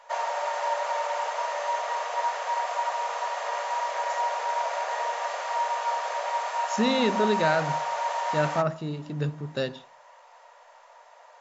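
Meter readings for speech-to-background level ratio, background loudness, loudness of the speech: 1.0 dB, -29.0 LUFS, -28.0 LUFS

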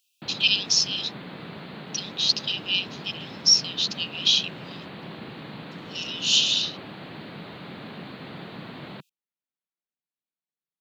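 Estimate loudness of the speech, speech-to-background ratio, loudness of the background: -22.5 LUFS, 17.0 dB, -39.5 LUFS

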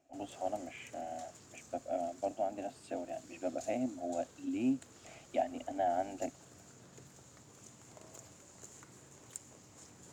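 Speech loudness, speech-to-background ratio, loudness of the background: -39.0 LUFS, 16.0 dB, -55.0 LUFS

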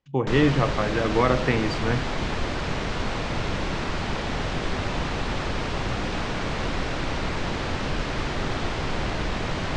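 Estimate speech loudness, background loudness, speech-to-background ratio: -24.0 LUFS, -28.5 LUFS, 4.5 dB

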